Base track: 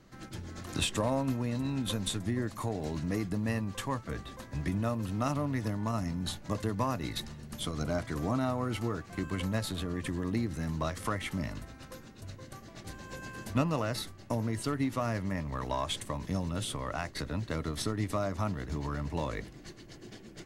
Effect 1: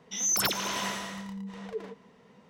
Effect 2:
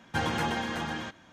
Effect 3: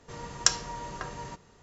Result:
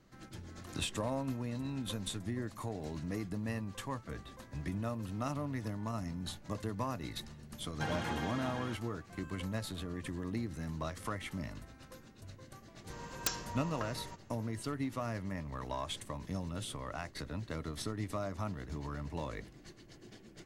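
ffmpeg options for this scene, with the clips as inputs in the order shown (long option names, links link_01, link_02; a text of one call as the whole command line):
ffmpeg -i bed.wav -i cue0.wav -i cue1.wav -i cue2.wav -filter_complex "[0:a]volume=-6dB[link_01];[3:a]aeval=exprs='(mod(4.73*val(0)+1,2)-1)/4.73':channel_layout=same[link_02];[2:a]atrim=end=1.32,asetpts=PTS-STARTPTS,volume=-9dB,afade=type=in:duration=0.004:curve=hsin,afade=type=out:start_time=1.316:duration=0.004:curve=hsin,adelay=7660[link_03];[link_02]atrim=end=1.62,asetpts=PTS-STARTPTS,volume=-7dB,afade=type=in:duration=0.004:curve=hsin,afade=type=out:start_time=1.616:duration=0.004:curve=hsin,adelay=12800[link_04];[link_01][link_03][link_04]amix=inputs=3:normalize=0" out.wav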